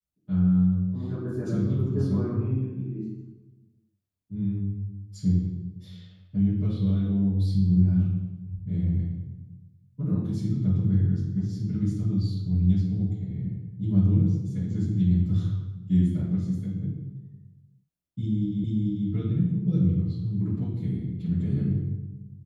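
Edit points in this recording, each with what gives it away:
18.64 s: repeat of the last 0.44 s

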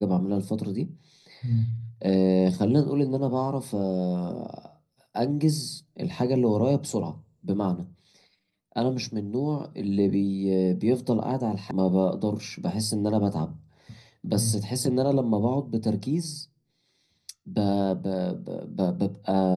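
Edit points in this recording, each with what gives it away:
11.71 s: sound stops dead

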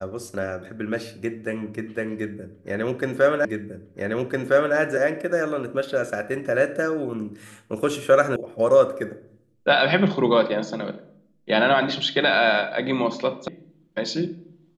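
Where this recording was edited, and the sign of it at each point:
3.45 s: repeat of the last 1.31 s
8.36 s: sound stops dead
13.48 s: sound stops dead

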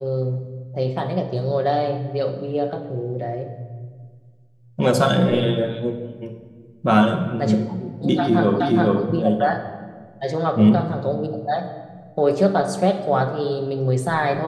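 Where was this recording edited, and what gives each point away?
8.60 s: repeat of the last 0.42 s

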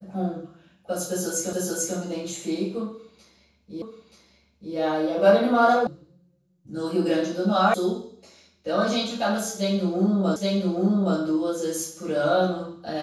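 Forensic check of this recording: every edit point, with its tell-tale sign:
1.53 s: repeat of the last 0.44 s
3.82 s: repeat of the last 0.93 s
5.87 s: sound stops dead
7.74 s: sound stops dead
10.36 s: repeat of the last 0.82 s

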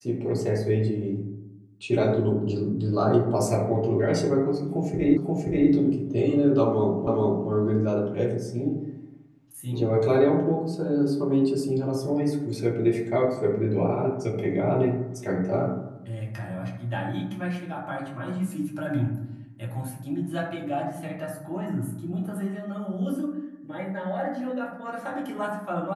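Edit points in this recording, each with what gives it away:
5.17 s: repeat of the last 0.53 s
7.07 s: repeat of the last 0.42 s

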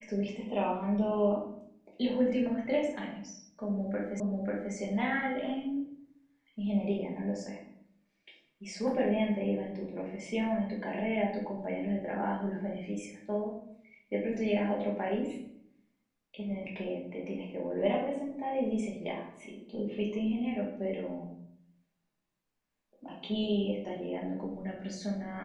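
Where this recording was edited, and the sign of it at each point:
4.20 s: repeat of the last 0.54 s

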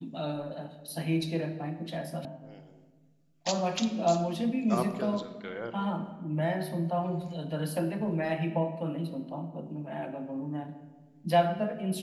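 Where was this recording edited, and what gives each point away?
2.25 s: sound stops dead

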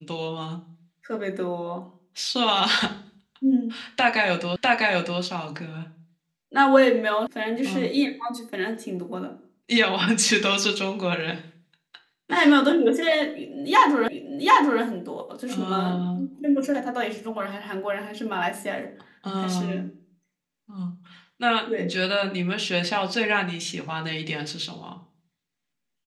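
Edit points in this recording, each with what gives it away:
4.56 s: repeat of the last 0.65 s
7.27 s: sound stops dead
14.08 s: repeat of the last 0.74 s

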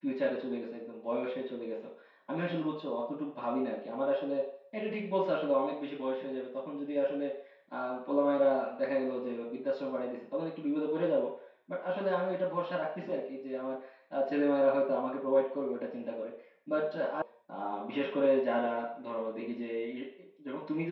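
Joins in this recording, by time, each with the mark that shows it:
17.22 s: sound stops dead

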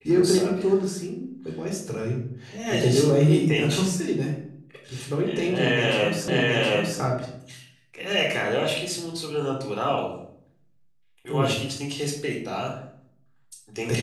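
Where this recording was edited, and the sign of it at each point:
6.28 s: repeat of the last 0.72 s

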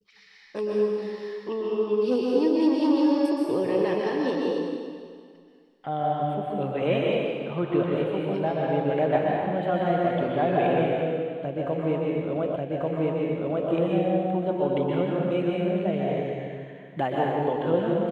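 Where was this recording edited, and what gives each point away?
12.56 s: repeat of the last 1.14 s

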